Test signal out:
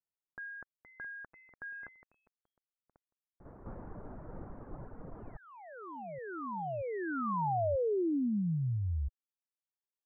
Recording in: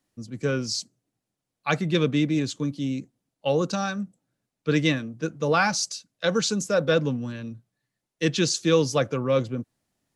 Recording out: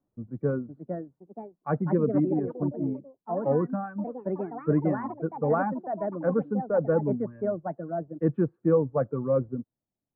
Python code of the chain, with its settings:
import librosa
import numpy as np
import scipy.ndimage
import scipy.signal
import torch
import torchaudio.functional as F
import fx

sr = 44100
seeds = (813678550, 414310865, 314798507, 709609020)

y = fx.dereverb_blind(x, sr, rt60_s=1.2)
y = fx.echo_pitch(y, sr, ms=548, semitones=4, count=3, db_per_echo=-6.0)
y = scipy.signal.sosfilt(scipy.signal.bessel(8, 800.0, 'lowpass', norm='mag', fs=sr, output='sos'), y)